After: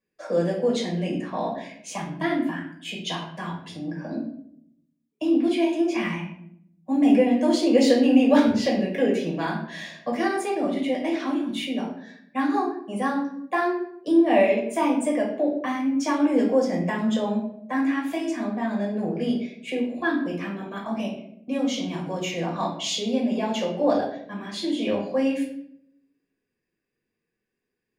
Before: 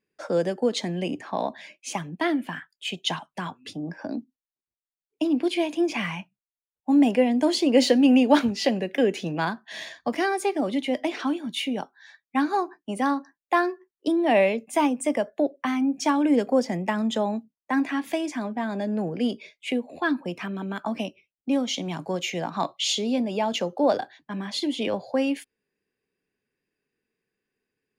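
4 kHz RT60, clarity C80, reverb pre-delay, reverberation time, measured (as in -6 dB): 0.45 s, 9.0 dB, 5 ms, 0.70 s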